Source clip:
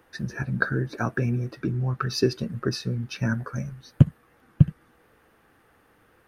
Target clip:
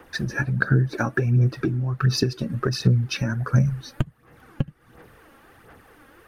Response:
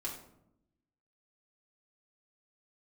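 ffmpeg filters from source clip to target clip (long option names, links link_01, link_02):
-af "adynamicequalizer=threshold=0.0178:dfrequency=130:dqfactor=2.2:tfrequency=130:tqfactor=2.2:attack=5:release=100:ratio=0.375:range=3:mode=boostabove:tftype=bell,acompressor=threshold=-27dB:ratio=10,aphaser=in_gain=1:out_gain=1:delay=3.7:decay=0.51:speed=1.4:type=sinusoidal,volume=7.5dB"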